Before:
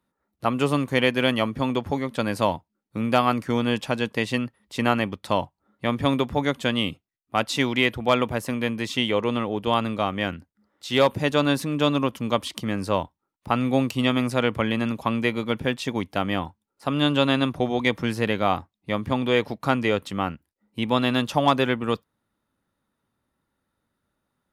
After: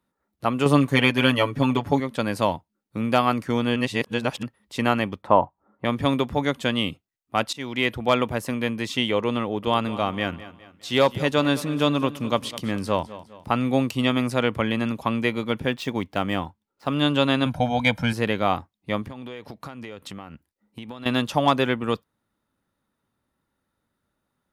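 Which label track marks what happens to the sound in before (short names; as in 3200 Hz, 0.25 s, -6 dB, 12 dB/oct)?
0.650000	2.000000	comb 7 ms, depth 99%
3.760000	4.430000	reverse
5.220000	5.850000	EQ curve 140 Hz 0 dB, 970 Hz +8 dB, 2900 Hz -9 dB, 4900 Hz -20 dB
7.530000	7.930000	fade in, from -20 dB
9.420000	13.540000	feedback echo 0.205 s, feedback 44%, level -16 dB
15.720000	16.950000	median filter over 5 samples
17.460000	18.130000	comb 1.3 ms, depth 99%
19.020000	21.060000	compressor 20:1, threshold -32 dBFS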